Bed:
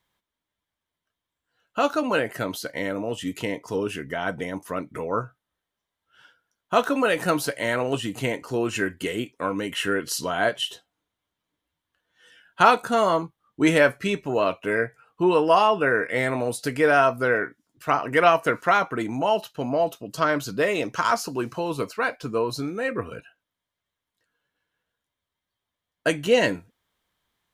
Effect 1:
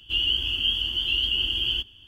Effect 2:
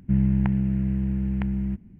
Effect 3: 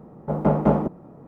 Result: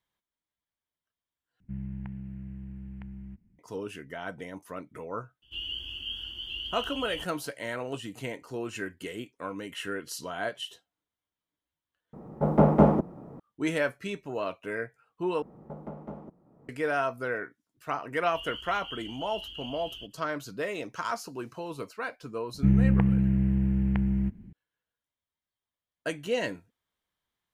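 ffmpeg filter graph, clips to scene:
-filter_complex "[2:a]asplit=2[a][b];[1:a]asplit=2[c][d];[3:a]asplit=2[e][f];[0:a]volume=-10dB[g];[a]equalizer=f=420:t=o:w=1.7:g=-5[h];[f]acompressor=threshold=-39dB:ratio=3:attack=72:release=452:knee=1:detection=rms[i];[g]asplit=4[j][k][l][m];[j]atrim=end=1.604[n];[h]atrim=end=1.99,asetpts=PTS-STARTPTS,volume=-15dB[o];[k]atrim=start=3.586:end=12.134[p];[e]atrim=end=1.27[q];[l]atrim=start=13.396:end=15.424[r];[i]atrim=end=1.27,asetpts=PTS-STARTPTS,volume=-6.5dB[s];[m]atrim=start=16.686[t];[c]atrim=end=2.07,asetpts=PTS-STARTPTS,volume=-12.5dB,afade=t=in:d=0.004:c=hsin,afade=t=out:st=2.066:d=0.004:c=hsin,adelay=5420[u];[d]atrim=end=2.07,asetpts=PTS-STARTPTS,volume=-18dB,afade=t=in:d=0.004:c=hsin,afade=t=out:st=2.066:d=0.004:c=hsin,adelay=18240[v];[b]atrim=end=1.99,asetpts=PTS-STARTPTS,afade=t=in:d=0.004:c=hsin,afade=t=out:st=1.986:d=0.004:c=hsin,adelay=22540[w];[n][o]acrossfade=d=0.004:c1=hsin:c2=hsin[x];[x][p]acrossfade=d=0.004:c1=hsin:c2=hsin[y];[y][q]acrossfade=d=0.004:c1=hsin:c2=hsin[z];[z][r]acrossfade=d=0.004:c1=hsin:c2=hsin[aa];[aa][s]acrossfade=d=0.004:c1=hsin:c2=hsin[ab];[ab][t]acrossfade=d=0.004:c1=hsin:c2=hsin[ac];[ac][u][v][w]amix=inputs=4:normalize=0"

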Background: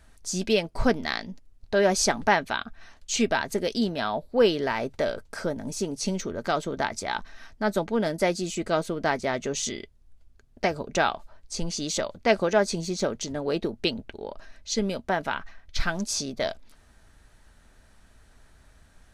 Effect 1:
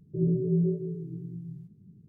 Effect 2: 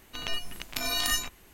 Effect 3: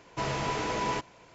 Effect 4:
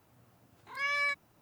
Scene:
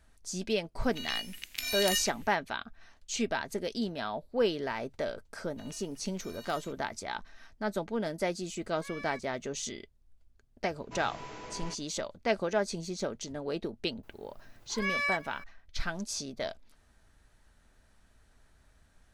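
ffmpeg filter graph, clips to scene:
-filter_complex "[2:a]asplit=2[a][b];[4:a]asplit=2[c][d];[0:a]volume=-7.5dB[e];[a]highshelf=f=1.5k:t=q:w=1.5:g=12[f];[b]acompressor=threshold=-30dB:ratio=6:attack=3.2:release=140:knee=1:detection=peak[g];[d]aecho=1:1:376:0.0891[h];[f]atrim=end=1.53,asetpts=PTS-STARTPTS,volume=-15.5dB,afade=t=in:d=0.004:c=hsin,afade=t=out:st=1.526:d=0.004:c=hsin,adelay=820[i];[g]atrim=end=1.53,asetpts=PTS-STARTPTS,volume=-17dB,afade=t=in:d=0.004:c=hsin,afade=t=out:st=1.526:d=0.004:c=hsin,adelay=5440[j];[c]atrim=end=1.41,asetpts=PTS-STARTPTS,volume=-14dB,afade=t=in:d=0.004:c=hsin,afade=t=out:st=1.406:d=0.004:c=hsin,adelay=8050[k];[3:a]atrim=end=1.34,asetpts=PTS-STARTPTS,volume=-13.5dB,afade=t=in:d=0.004:c=hsin,afade=t=out:st=1.336:d=0.004:c=hsin,adelay=473634S[l];[h]atrim=end=1.41,asetpts=PTS-STARTPTS,afade=t=in:d=0.004:c=hsin,afade=t=out:st=1.406:d=0.004:c=hsin,adelay=14030[m];[e][i][j][k][l][m]amix=inputs=6:normalize=0"

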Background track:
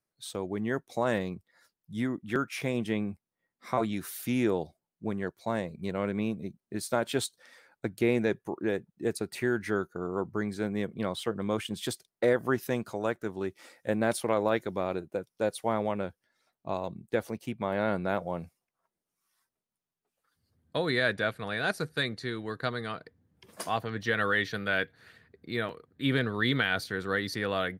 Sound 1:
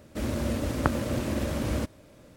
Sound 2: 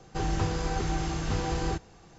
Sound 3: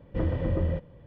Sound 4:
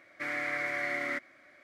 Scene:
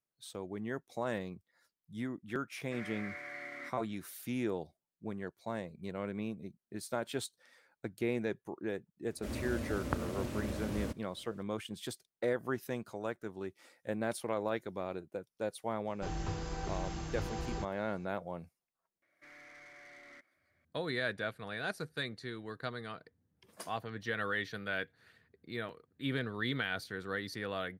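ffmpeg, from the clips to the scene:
-filter_complex "[4:a]asplit=2[a][b];[0:a]volume=-8dB[c];[b]aeval=exprs='(tanh(44.7*val(0)+0.05)-tanh(0.05))/44.7':c=same[d];[a]atrim=end=1.63,asetpts=PTS-STARTPTS,volume=-12dB,afade=t=in:d=0.004:c=hsin,afade=t=out:st=1.626:d=0.004:c=hsin,adelay=2510[e];[1:a]atrim=end=2.36,asetpts=PTS-STARTPTS,volume=-9.5dB,afade=t=in:d=0.004:c=hsin,afade=t=out:st=2.356:d=0.004:c=hsin,adelay=9070[f];[2:a]atrim=end=2.18,asetpts=PTS-STARTPTS,volume=-9.5dB,afade=t=in:d=0.004:c=hsin,afade=t=out:st=2.176:d=0.004:c=hsin,adelay=15870[g];[d]atrim=end=1.63,asetpts=PTS-STARTPTS,volume=-18dB,afade=t=in:d=0.004:c=hsin,afade=t=out:st=1.626:d=0.004:c=hsin,adelay=19020[h];[c][e][f][g][h]amix=inputs=5:normalize=0"

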